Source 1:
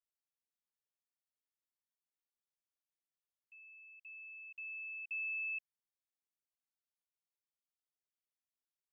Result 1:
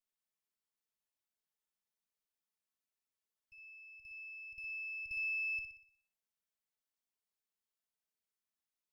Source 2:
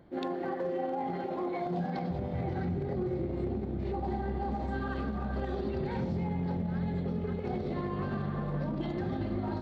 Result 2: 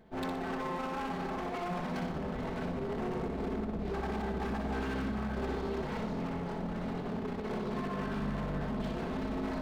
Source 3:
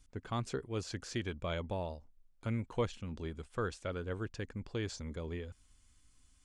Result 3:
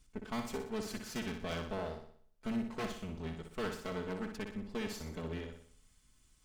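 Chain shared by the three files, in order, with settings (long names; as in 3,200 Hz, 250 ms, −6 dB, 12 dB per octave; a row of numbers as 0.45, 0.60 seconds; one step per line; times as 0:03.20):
lower of the sound and its delayed copy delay 4.6 ms
wave folding −31.5 dBFS
flutter between parallel walls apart 10.4 metres, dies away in 0.56 s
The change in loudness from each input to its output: +2.0, −2.0, −1.0 LU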